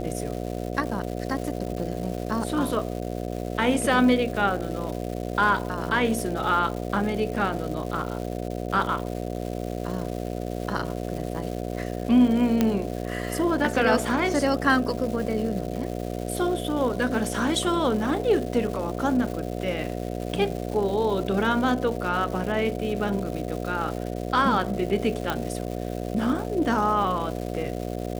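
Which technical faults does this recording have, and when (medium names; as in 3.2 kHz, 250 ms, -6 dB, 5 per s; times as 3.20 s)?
buzz 60 Hz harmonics 12 -31 dBFS
crackle 410 per s -33 dBFS
12.61 s: pop -8 dBFS
25.30 s: pop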